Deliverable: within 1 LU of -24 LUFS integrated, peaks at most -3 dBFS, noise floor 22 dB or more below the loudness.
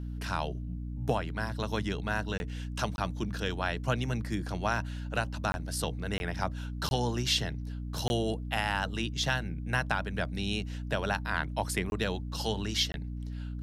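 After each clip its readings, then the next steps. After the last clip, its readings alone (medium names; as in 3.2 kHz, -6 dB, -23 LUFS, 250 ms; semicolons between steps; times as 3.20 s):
dropouts 8; longest dropout 21 ms; hum 60 Hz; highest harmonic 300 Hz; hum level -35 dBFS; loudness -32.5 LUFS; peak level -14.0 dBFS; loudness target -24.0 LUFS
-> interpolate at 2.38/2.96/5.52/6.18/6.89/8.08/11.90/12.92 s, 21 ms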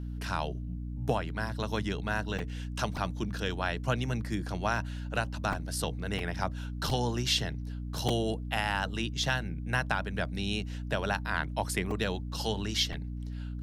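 dropouts 0; hum 60 Hz; highest harmonic 300 Hz; hum level -35 dBFS
-> hum notches 60/120/180/240/300 Hz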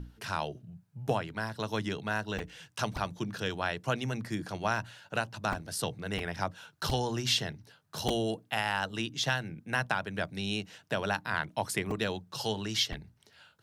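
hum not found; loudness -33.5 LUFS; peak level -14.0 dBFS; loudness target -24.0 LUFS
-> trim +9.5 dB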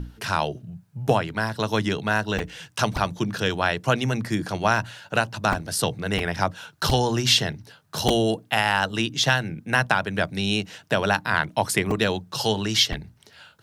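loudness -24.0 LUFS; peak level -4.5 dBFS; noise floor -57 dBFS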